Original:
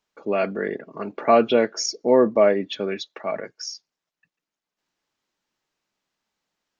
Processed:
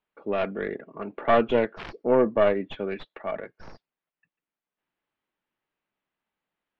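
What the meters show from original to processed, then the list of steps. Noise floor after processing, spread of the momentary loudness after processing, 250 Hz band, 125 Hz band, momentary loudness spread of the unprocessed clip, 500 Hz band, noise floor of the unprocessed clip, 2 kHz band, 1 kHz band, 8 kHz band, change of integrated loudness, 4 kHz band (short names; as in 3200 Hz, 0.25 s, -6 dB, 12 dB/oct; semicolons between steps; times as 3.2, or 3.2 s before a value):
under -85 dBFS, 15 LU, -4.5 dB, -1.0 dB, 16 LU, -4.0 dB, under -85 dBFS, -2.0 dB, -3.5 dB, n/a, -4.0 dB, -11.0 dB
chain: tracing distortion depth 0.39 ms; LPF 3100 Hz 24 dB/oct; gain -4 dB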